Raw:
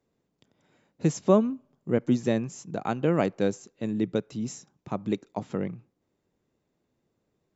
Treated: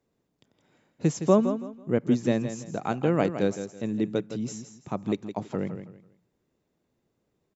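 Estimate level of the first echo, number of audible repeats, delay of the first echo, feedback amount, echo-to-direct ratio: -10.0 dB, 3, 164 ms, 26%, -9.5 dB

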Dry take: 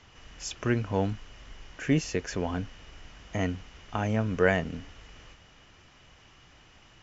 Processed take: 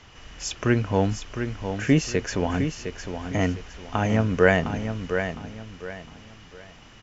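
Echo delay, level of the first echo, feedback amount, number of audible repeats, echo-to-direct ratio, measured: 709 ms, -8.0 dB, 31%, 3, -7.5 dB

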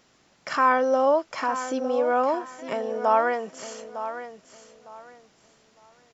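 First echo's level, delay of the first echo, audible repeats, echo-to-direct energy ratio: -11.5 dB, 906 ms, 2, -11.0 dB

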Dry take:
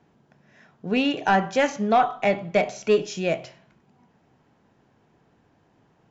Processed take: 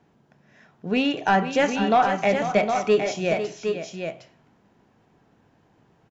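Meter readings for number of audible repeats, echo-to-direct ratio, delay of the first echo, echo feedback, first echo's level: 2, -5.0 dB, 498 ms, no regular repeats, -10.5 dB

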